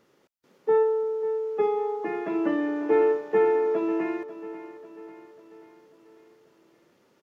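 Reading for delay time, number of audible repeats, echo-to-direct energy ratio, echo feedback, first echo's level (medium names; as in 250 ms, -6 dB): 543 ms, 4, -12.5 dB, 52%, -14.0 dB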